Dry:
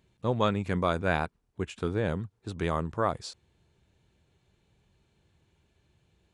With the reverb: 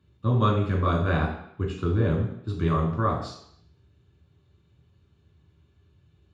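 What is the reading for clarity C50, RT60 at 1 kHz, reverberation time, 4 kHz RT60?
5.0 dB, 0.70 s, 0.70 s, 0.70 s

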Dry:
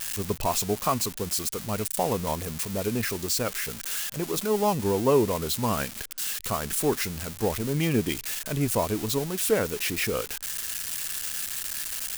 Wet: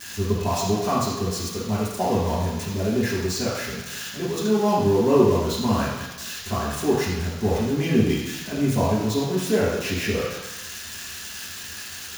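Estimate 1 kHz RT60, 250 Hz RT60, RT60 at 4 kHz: 1.1 s, 1.0 s, 1.2 s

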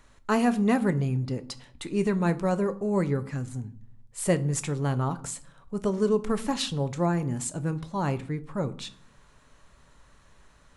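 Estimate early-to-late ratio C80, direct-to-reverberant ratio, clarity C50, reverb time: 22.0 dB, 10.5 dB, 18.0 dB, 0.55 s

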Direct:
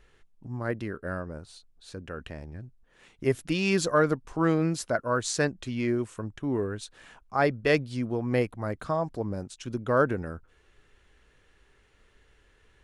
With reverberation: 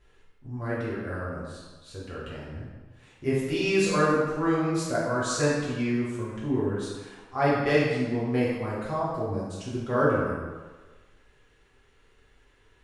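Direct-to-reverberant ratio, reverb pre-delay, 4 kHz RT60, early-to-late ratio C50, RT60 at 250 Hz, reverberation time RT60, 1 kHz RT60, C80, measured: −8.5 dB, 3 ms, 1.0 s, −0.5 dB, 1.2 s, 1.3 s, 1.4 s, 2.0 dB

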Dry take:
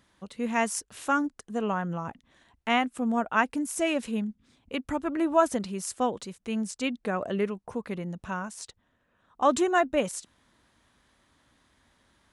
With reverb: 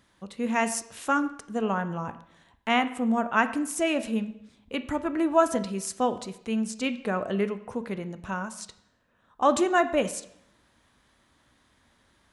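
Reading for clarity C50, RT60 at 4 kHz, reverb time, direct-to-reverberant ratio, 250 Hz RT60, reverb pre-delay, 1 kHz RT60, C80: 14.0 dB, 0.70 s, 0.75 s, 10.5 dB, 0.80 s, 7 ms, 0.75 s, 16.0 dB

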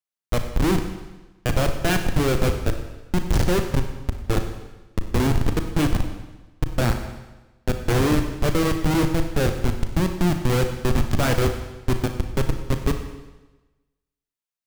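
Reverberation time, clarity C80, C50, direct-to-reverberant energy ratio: 1.1 s, 9.0 dB, 7.5 dB, 6.0 dB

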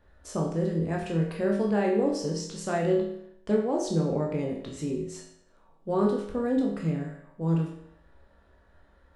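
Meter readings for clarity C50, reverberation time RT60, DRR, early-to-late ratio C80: 4.5 dB, 0.70 s, −1.5 dB, 7.5 dB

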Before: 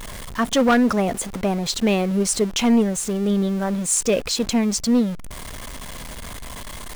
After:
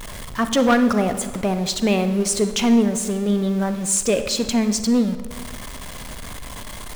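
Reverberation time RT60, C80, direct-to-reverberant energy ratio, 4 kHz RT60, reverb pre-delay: 1.4 s, 12.0 dB, 9.5 dB, 1.0 s, 37 ms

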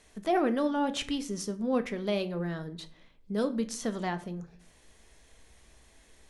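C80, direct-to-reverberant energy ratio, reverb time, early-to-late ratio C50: 20.5 dB, 9.0 dB, 0.50 s, 16.5 dB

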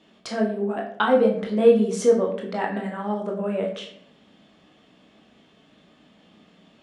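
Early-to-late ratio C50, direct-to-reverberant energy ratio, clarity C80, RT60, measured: 6.5 dB, −0.5 dB, 10.0 dB, 0.65 s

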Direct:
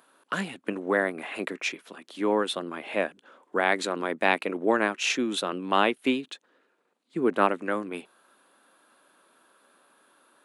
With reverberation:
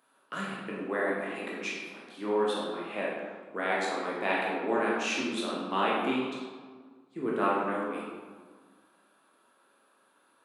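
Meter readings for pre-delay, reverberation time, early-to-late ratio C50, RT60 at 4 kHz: 15 ms, 1.6 s, −0.5 dB, 0.95 s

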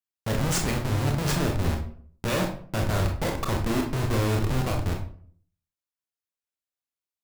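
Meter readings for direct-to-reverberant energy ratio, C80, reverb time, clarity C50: 1.5 dB, 11.5 dB, 0.55 s, 7.0 dB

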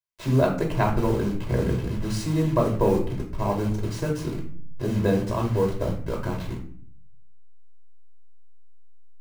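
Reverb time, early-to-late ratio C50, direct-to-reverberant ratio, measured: 0.50 s, 8.0 dB, −1.0 dB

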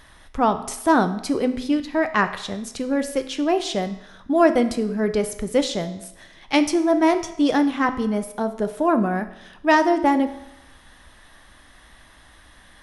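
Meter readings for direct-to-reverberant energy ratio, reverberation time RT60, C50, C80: 8.5 dB, 0.85 s, 12.0 dB, 14.5 dB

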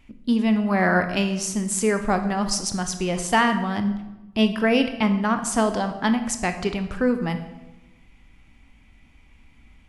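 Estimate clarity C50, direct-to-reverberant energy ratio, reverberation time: 10.0 dB, 7.5 dB, 1.0 s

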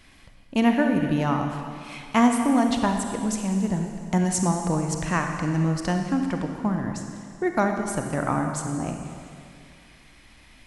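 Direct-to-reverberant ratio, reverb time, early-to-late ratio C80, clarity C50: 4.0 dB, 2.3 s, 5.5 dB, 4.5 dB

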